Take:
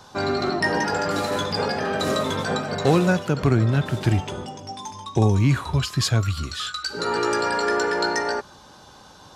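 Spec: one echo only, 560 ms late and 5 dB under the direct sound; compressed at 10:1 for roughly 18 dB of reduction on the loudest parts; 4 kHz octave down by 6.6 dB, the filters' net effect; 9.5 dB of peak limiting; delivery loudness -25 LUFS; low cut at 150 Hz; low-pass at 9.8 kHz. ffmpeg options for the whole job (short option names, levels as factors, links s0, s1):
-af "highpass=150,lowpass=9800,equalizer=f=4000:t=o:g=-8,acompressor=threshold=0.02:ratio=10,alimiter=level_in=2.24:limit=0.0631:level=0:latency=1,volume=0.447,aecho=1:1:560:0.562,volume=5.31"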